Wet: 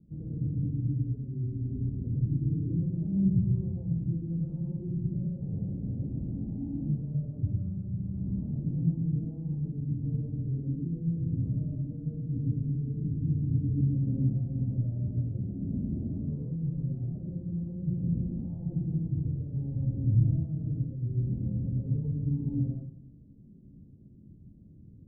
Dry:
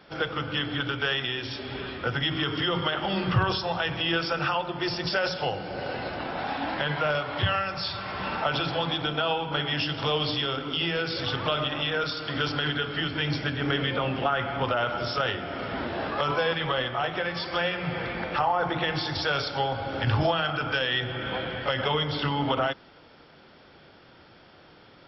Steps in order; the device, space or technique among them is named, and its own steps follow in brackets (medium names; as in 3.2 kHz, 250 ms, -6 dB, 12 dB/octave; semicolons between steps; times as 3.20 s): club heard from the street (peak limiter -22 dBFS, peak gain reduction 10 dB; low-pass 210 Hz 24 dB/octave; reverberation RT60 0.50 s, pre-delay 95 ms, DRR -2.5 dB); trim +5 dB